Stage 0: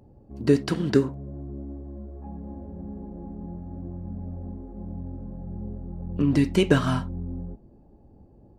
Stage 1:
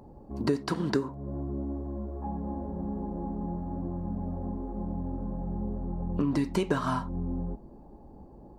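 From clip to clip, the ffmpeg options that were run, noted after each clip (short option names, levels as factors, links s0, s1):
-af "equalizer=f=100:t=o:w=0.67:g=-9,equalizer=f=1000:t=o:w=0.67:g=9,equalizer=f=4000:t=o:w=0.67:g=4,acompressor=threshold=0.0251:ratio=3,equalizer=f=3100:t=o:w=1:g=-6,volume=1.68"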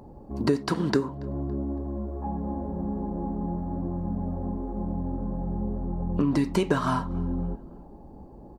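-filter_complex "[0:a]asplit=2[s0][s1];[s1]adelay=281,lowpass=f=3500:p=1,volume=0.0631,asplit=2[s2][s3];[s3]adelay=281,lowpass=f=3500:p=1,volume=0.47,asplit=2[s4][s5];[s5]adelay=281,lowpass=f=3500:p=1,volume=0.47[s6];[s0][s2][s4][s6]amix=inputs=4:normalize=0,volume=1.5"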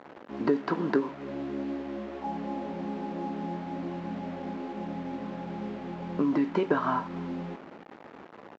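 -filter_complex "[0:a]aresample=16000,acrusher=bits=6:mix=0:aa=0.000001,aresample=44100,highpass=260,lowpass=2000,asplit=2[s0][s1];[s1]adelay=18,volume=0.224[s2];[s0][s2]amix=inputs=2:normalize=0"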